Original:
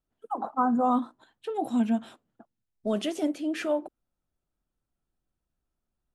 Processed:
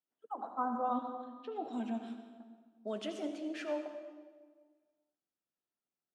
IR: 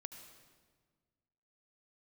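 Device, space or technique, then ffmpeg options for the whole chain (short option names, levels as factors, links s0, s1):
supermarket ceiling speaker: -filter_complex "[0:a]asettb=1/sr,asplit=3[s0][s1][s2];[s0]atrim=end=0.744[s3];[s1]atrim=start=0.74:end=1.73,asetpts=PTS-STARTPTS,afade=t=in:d=0.004:c=qsin,afade=t=out:st=0.986:d=0.004:c=qsin,lowpass=f=5700:w=0.5412,lowpass=f=5700:w=1.3066[s4];[s2]atrim=start=1.726[s5];[s3][s4]acrossfade=d=0.004:c1=hsin:c2=qsin[s6];[s6][s5]acrossfade=d=0.004:c1=qsin:c2=hsin,highpass=270,lowpass=6900[s7];[1:a]atrim=start_sample=2205[s8];[s7][s8]afir=irnorm=-1:irlink=0,volume=0.631"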